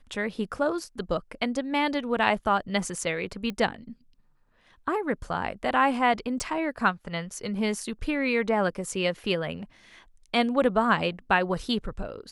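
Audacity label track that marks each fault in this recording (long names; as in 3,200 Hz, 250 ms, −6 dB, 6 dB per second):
3.500000	3.500000	click −20 dBFS
6.400000	6.400000	click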